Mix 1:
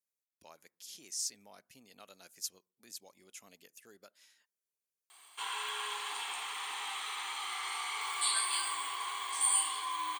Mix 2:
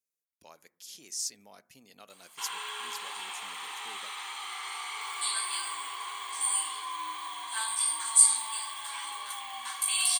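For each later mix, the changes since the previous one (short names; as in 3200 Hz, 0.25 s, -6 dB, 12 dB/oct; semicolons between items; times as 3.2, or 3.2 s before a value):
speech: send +10.0 dB; background: entry -3.00 s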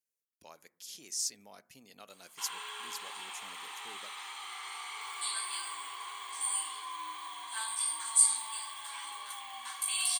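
background -4.5 dB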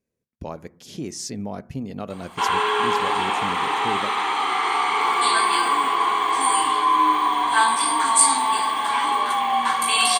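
background +8.0 dB; master: remove differentiator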